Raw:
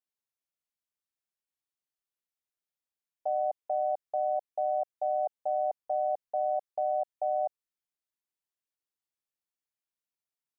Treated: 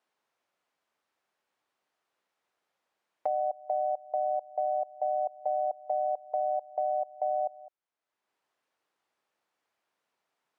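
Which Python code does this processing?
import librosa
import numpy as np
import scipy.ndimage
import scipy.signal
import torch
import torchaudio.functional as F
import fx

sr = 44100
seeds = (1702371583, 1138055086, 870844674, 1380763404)

y = fx.bandpass_q(x, sr, hz=800.0, q=0.68)
y = y + 10.0 ** (-22.5 / 20.0) * np.pad(y, (int(208 * sr / 1000.0), 0))[:len(y)]
y = fx.band_squash(y, sr, depth_pct=70)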